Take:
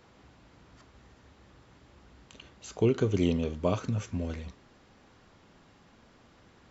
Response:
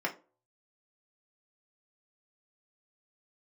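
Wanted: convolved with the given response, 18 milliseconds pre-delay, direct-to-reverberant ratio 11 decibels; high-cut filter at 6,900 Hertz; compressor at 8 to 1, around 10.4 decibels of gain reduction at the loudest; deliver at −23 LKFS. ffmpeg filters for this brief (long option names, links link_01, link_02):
-filter_complex "[0:a]lowpass=6900,acompressor=threshold=-31dB:ratio=8,asplit=2[link_01][link_02];[1:a]atrim=start_sample=2205,adelay=18[link_03];[link_02][link_03]afir=irnorm=-1:irlink=0,volume=-17.5dB[link_04];[link_01][link_04]amix=inputs=2:normalize=0,volume=15.5dB"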